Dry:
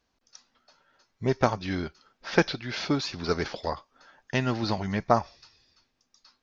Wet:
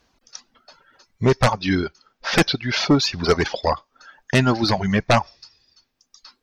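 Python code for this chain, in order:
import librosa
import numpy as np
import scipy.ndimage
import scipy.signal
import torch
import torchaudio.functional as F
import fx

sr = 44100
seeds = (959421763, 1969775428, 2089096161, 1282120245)

y = fx.fold_sine(x, sr, drive_db=13, ceiling_db=-4.5)
y = fx.dereverb_blind(y, sr, rt60_s=1.3)
y = F.gain(torch.from_numpy(y), -4.5).numpy()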